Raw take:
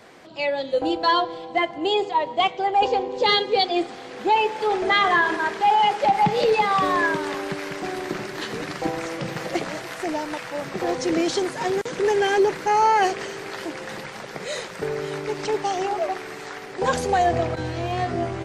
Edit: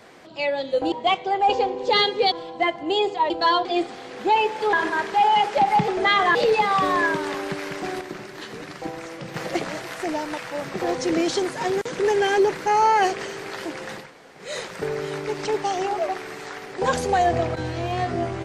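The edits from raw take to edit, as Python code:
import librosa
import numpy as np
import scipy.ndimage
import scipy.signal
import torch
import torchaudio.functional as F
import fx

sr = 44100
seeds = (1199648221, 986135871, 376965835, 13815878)

y = fx.edit(x, sr, fx.swap(start_s=0.92, length_s=0.35, other_s=2.25, other_length_s=1.4),
    fx.move(start_s=4.73, length_s=0.47, to_s=6.35),
    fx.clip_gain(start_s=8.01, length_s=1.33, db=-6.0),
    fx.room_tone_fill(start_s=14.03, length_s=0.42, crossfade_s=0.24), tone=tone)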